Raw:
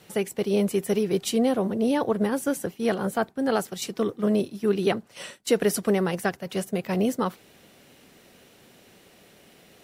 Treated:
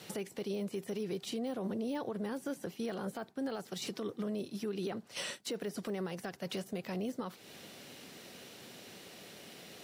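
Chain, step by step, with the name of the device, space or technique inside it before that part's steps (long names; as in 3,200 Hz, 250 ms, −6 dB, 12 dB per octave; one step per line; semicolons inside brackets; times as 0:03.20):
broadcast voice chain (high-pass filter 100 Hz; de-essing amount 95%; downward compressor 4 to 1, threshold −34 dBFS, peak gain reduction 14.5 dB; parametric band 4,600 Hz +5 dB 1.2 octaves; brickwall limiter −30.5 dBFS, peak gain reduction 9 dB)
level +1.5 dB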